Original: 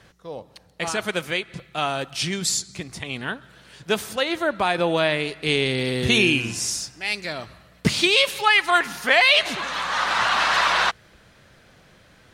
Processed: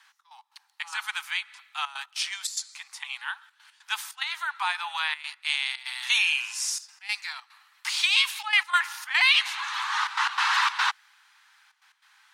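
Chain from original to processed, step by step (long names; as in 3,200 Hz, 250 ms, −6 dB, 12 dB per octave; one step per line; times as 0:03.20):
Butterworth high-pass 820 Hz 96 dB per octave
gate pattern "xx.x.xxx.xxxxxxx" 146 BPM −12 dB
level −3 dB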